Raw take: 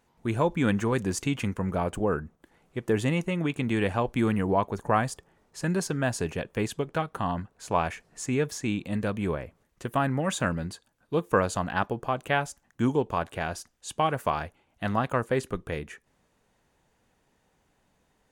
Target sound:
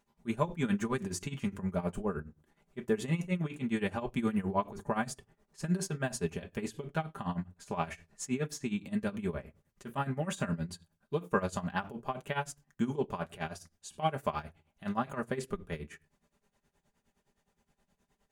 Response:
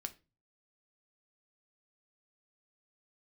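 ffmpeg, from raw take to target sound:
-filter_complex "[0:a]bass=f=250:g=3,treble=f=4000:g=2,asplit=2[s0][s1];[1:a]atrim=start_sample=2205,adelay=5[s2];[s1][s2]afir=irnorm=-1:irlink=0,volume=1[s3];[s0][s3]amix=inputs=2:normalize=0,tremolo=f=9.6:d=0.85,volume=0.501"

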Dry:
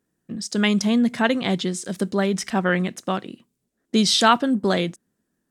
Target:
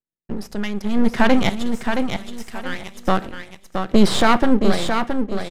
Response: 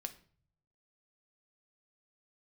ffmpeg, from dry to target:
-filter_complex "[0:a]agate=range=0.0224:threshold=0.00891:ratio=3:detection=peak,tremolo=f=0.71:d=0.84,asettb=1/sr,asplit=3[s0][s1][s2];[s0]atrim=end=1.494[s3];[s1]atrim=start=1.49:end=3.01,asetpts=PTS-STARTPTS,afade=t=in:d=0.004:c=qsin,afade=t=out:st=1.516:d=0.004:c=qsin,aderivative[s4];[s2]atrim=start=3.006[s5];[s3][s4]acrossfade=d=0.004:c1=hsin:c2=qsin[s6];[s6][s5]acrossfade=d=0.004:c1=qsin:c2=hsin,alimiter=limit=0.188:level=0:latency=1:release=16,acrossover=split=4700[s7][s8];[s8]acompressor=threshold=0.00398:ratio=4:attack=1:release=60[s9];[s7][s9]amix=inputs=2:normalize=0,aeval=exprs='max(val(0),0)':c=same,aecho=1:1:671|1342|2013:0.501|0.13|0.0339,asplit=2[s10][s11];[1:a]atrim=start_sample=2205,lowpass=2800[s12];[s11][s12]afir=irnorm=-1:irlink=0,volume=0.891[s13];[s10][s13]amix=inputs=2:normalize=0,aresample=32000,aresample=44100,volume=2.66"

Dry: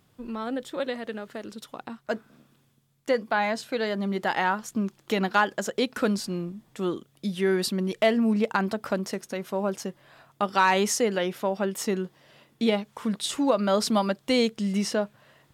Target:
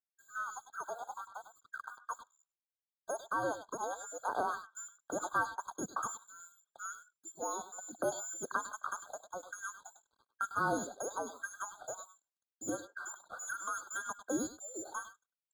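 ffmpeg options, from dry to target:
-filter_complex "[0:a]bandreject=f=60:t=h:w=6,bandreject=f=120:t=h:w=6,bandreject=f=180:t=h:w=6,lowpass=f=2200:t=q:w=0.5098,lowpass=f=2200:t=q:w=0.6013,lowpass=f=2200:t=q:w=0.9,lowpass=f=2200:t=q:w=2.563,afreqshift=-2600,aemphasis=mode=production:type=50kf,afftdn=nr=23:nf=-44,adynamicequalizer=threshold=0.00316:dfrequency=270:dqfactor=1.1:tfrequency=270:tqfactor=1.1:attack=5:release=100:ratio=0.375:range=2.5:mode=boostabove:tftype=bell,acrossover=split=630|2000[s0][s1][s2];[s1]acompressor=threshold=0.0178:ratio=6[s3];[s2]asoftclip=type=tanh:threshold=0.0266[s4];[s0][s3][s4]amix=inputs=3:normalize=0,highpass=110,aeval=exprs='sgn(val(0))*max(abs(val(0))-0.00141,0)':c=same,asplit=2[s5][s6];[s6]adelay=100,highpass=300,lowpass=3400,asoftclip=type=hard:threshold=0.0398,volume=0.282[s7];[s5][s7]amix=inputs=2:normalize=0,afftfilt=real='re*eq(mod(floor(b*sr/1024/1600),2),0)':imag='im*eq(mod(floor(b*sr/1024/1600),2),0)':win_size=1024:overlap=0.75,volume=1.26"

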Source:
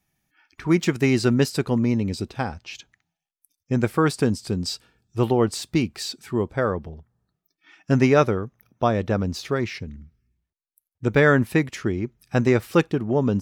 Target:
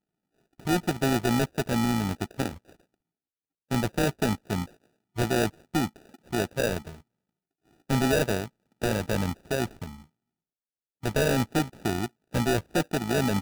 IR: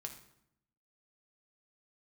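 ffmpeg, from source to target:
-filter_complex "[0:a]lowpass=1200,acrossover=split=170[s0][s1];[s0]aeval=exprs='sgn(val(0))*max(abs(val(0))-0.00596,0)':c=same[s2];[s2][s1]amix=inputs=2:normalize=0,tremolo=f=55:d=0.519,acrusher=samples=41:mix=1:aa=0.000001,volume=8.91,asoftclip=hard,volume=0.112"

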